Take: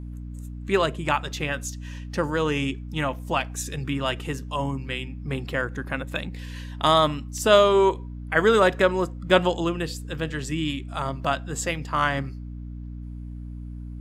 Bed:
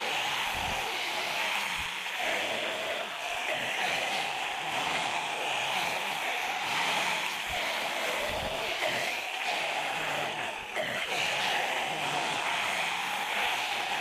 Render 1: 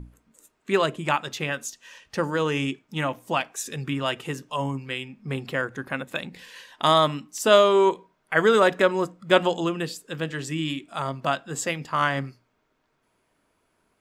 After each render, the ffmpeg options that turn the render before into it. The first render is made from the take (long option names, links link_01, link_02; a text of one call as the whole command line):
ffmpeg -i in.wav -af "bandreject=frequency=60:width_type=h:width=6,bandreject=frequency=120:width_type=h:width=6,bandreject=frequency=180:width_type=h:width=6,bandreject=frequency=240:width_type=h:width=6,bandreject=frequency=300:width_type=h:width=6" out.wav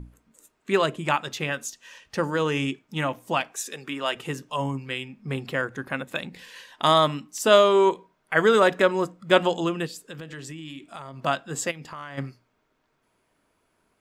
ffmpeg -i in.wav -filter_complex "[0:a]asettb=1/sr,asplit=3[link_01][link_02][link_03];[link_01]atrim=end=3.584[link_04];[link_02]atrim=start=3.58:end=4.15,asetpts=PTS-STARTPTS,afade=type=in:duration=0.004:curve=qsin,afade=type=out:start_time=0.566:duration=0.004:curve=qsin,highpass=340[link_05];[link_03]atrim=start=4.146[link_06];[link_04][link_05]acrossfade=duration=0.004:curve1=hsin:curve2=qsin[link_07];[link_07][link_06]acrossfade=duration=0.004:curve1=qsin:curve2=hsin,asplit=3[link_08][link_09][link_10];[link_08]afade=type=out:start_time=9.86:duration=0.02[link_11];[link_09]acompressor=threshold=-34dB:ratio=10:attack=3.2:release=140:knee=1:detection=peak,afade=type=in:start_time=9.86:duration=0.02,afade=type=out:start_time=11.2:duration=0.02[link_12];[link_10]afade=type=in:start_time=11.2:duration=0.02[link_13];[link_11][link_12][link_13]amix=inputs=3:normalize=0,asplit=3[link_14][link_15][link_16];[link_14]afade=type=out:start_time=11.7:duration=0.02[link_17];[link_15]acompressor=threshold=-37dB:ratio=4:attack=3.2:release=140:knee=1:detection=peak,afade=type=in:start_time=11.7:duration=0.02,afade=type=out:start_time=12.17:duration=0.02[link_18];[link_16]afade=type=in:start_time=12.17:duration=0.02[link_19];[link_17][link_18][link_19]amix=inputs=3:normalize=0" out.wav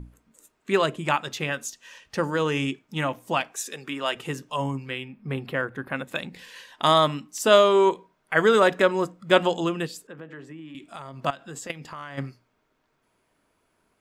ffmpeg -i in.wav -filter_complex "[0:a]asettb=1/sr,asplit=3[link_01][link_02][link_03];[link_01]atrim=end=4.904[link_04];[link_02]atrim=start=4.9:end=5.96,asetpts=PTS-STARTPTS,afade=type=in:duration=0.004:curve=qsin,afade=type=out:start_time=1.056:duration=0.004:curve=qsin,equalizer=frequency=6500:width=1.3:gain=-13.5[link_05];[link_03]atrim=start=5.956[link_06];[link_04][link_05]acrossfade=duration=0.004:curve1=hsin:curve2=qsin[link_07];[link_07][link_06]acrossfade=duration=0.004:curve1=qsin:curve2=hsin,asettb=1/sr,asplit=3[link_08][link_09][link_10];[link_08]atrim=end=10.074[link_11];[link_09]atrim=start=10.07:end=10.75,asetpts=PTS-STARTPTS,afade=type=in:duration=0.004:curve=qsin,afade=type=out:start_time=0.676:duration=0.004:curve=qsin,acrossover=split=170 2100:gain=0.2 1 0.1[link_12][link_13][link_14];[link_12][link_13][link_14]amix=inputs=3:normalize=0[link_15];[link_10]atrim=start=10.746[link_16];[link_11][link_15]acrossfade=duration=0.004:curve1=hsin:curve2=qsin[link_17];[link_17][link_16]acrossfade=duration=0.004:curve1=qsin:curve2=hsin,asettb=1/sr,asplit=3[link_18][link_19][link_20];[link_18]atrim=end=11.304[link_21];[link_19]atrim=start=11.3:end=11.7,asetpts=PTS-STARTPTS,afade=type=in:duration=0.004:curve=qsin,afade=type=out:start_time=0.396:duration=0.004:curve=qsin,acompressor=threshold=-34dB:ratio=8:attack=3.2:release=140:knee=1:detection=peak[link_22];[link_20]atrim=start=11.696[link_23];[link_21][link_22]acrossfade=duration=0.004:curve1=hsin:curve2=qsin[link_24];[link_24][link_23]acrossfade=duration=0.004:curve1=qsin:curve2=hsin" out.wav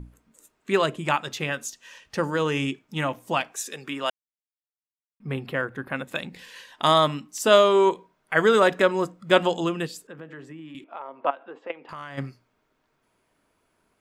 ffmpeg -i in.wav -filter_complex "[0:a]asettb=1/sr,asplit=3[link_01][link_02][link_03];[link_01]atrim=end=10.844[link_04];[link_02]atrim=start=10.84:end=11.89,asetpts=PTS-STARTPTS,afade=type=in:duration=0.004:curve=qsin,afade=type=out:start_time=1.046:duration=0.004:curve=qsin,highpass=frequency=300:width=0.5412,highpass=frequency=300:width=1.3066,equalizer=frequency=520:width_type=q:width=4:gain=5,equalizer=frequency=900:width_type=q:width=4:gain=7,equalizer=frequency=1800:width_type=q:width=4:gain=-5,lowpass=frequency=2500:width=0.5412,lowpass=frequency=2500:width=1.3066[link_05];[link_03]atrim=start=11.886[link_06];[link_04][link_05]acrossfade=duration=0.004:curve1=hsin:curve2=qsin[link_07];[link_07][link_06]acrossfade=duration=0.004:curve1=qsin:curve2=hsin,asplit=3[link_08][link_09][link_10];[link_08]atrim=end=4.1,asetpts=PTS-STARTPTS,afade=type=out:start_time=4.096:duration=0.004:curve=hsin[link_11];[link_09]atrim=start=4.1:end=5.2,asetpts=PTS-STARTPTS,volume=0[link_12];[link_10]atrim=start=5.2,asetpts=PTS-STARTPTS,afade=type=in:duration=0.004:curve=hsin[link_13];[link_11][link_12][link_13]concat=n=3:v=0:a=1" out.wav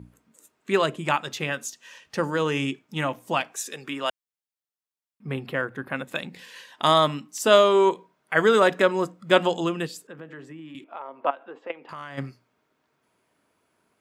ffmpeg -i in.wav -af "highpass=98" out.wav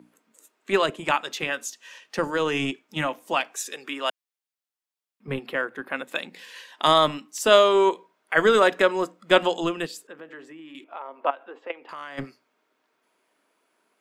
ffmpeg -i in.wav -filter_complex "[0:a]acrossover=split=220|3500[link_01][link_02][link_03];[link_01]acrusher=bits=4:mix=0:aa=0.5[link_04];[link_02]crystalizer=i=2:c=0[link_05];[link_04][link_05][link_03]amix=inputs=3:normalize=0" out.wav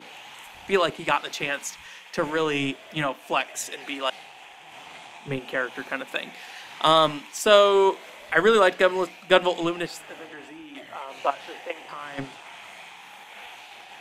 ffmpeg -i in.wav -i bed.wav -filter_complex "[1:a]volume=-13dB[link_01];[0:a][link_01]amix=inputs=2:normalize=0" out.wav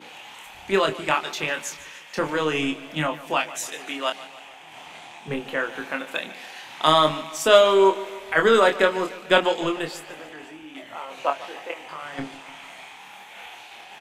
ffmpeg -i in.wav -filter_complex "[0:a]asplit=2[link_01][link_02];[link_02]adelay=26,volume=-5.5dB[link_03];[link_01][link_03]amix=inputs=2:normalize=0,aecho=1:1:148|296|444|592|740:0.141|0.0777|0.0427|0.0235|0.0129" out.wav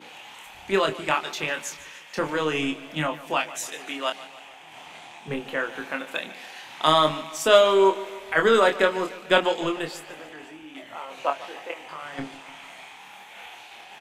ffmpeg -i in.wav -af "volume=-1.5dB" out.wav